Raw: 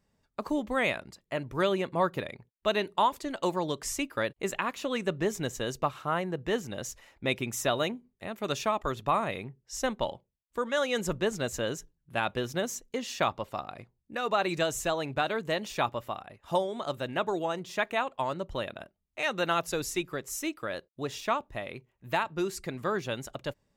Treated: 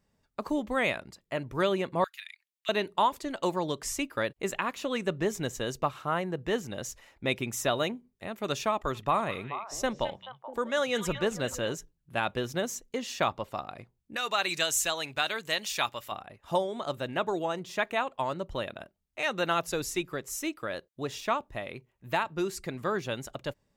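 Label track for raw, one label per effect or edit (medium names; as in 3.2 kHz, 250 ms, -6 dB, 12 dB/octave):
2.040000	2.690000	inverse Chebyshev high-pass stop band from 450 Hz, stop band 70 dB
8.730000	11.750000	repeats whose band climbs or falls 215 ms, band-pass from 2.6 kHz, each repeat -1.4 oct, level -6 dB
14.160000	16.120000	tilt shelf lows -9 dB, about 1.3 kHz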